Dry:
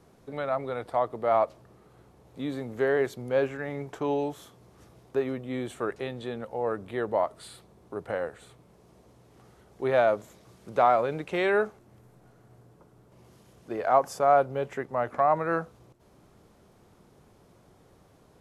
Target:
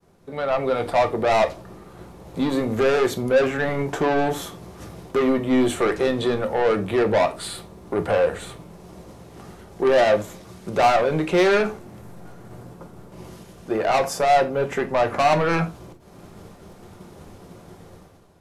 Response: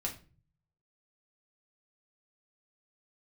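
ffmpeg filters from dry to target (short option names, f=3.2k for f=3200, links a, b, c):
-filter_complex "[0:a]agate=range=-33dB:threshold=-54dB:ratio=3:detection=peak,dynaudnorm=f=120:g=9:m=13dB,asoftclip=type=tanh:threshold=-18.5dB,asplit=2[a][b];[1:a]atrim=start_sample=2205,atrim=end_sample=4410[c];[b][c]afir=irnorm=-1:irlink=0,volume=-0.5dB[d];[a][d]amix=inputs=2:normalize=0,volume=-2dB"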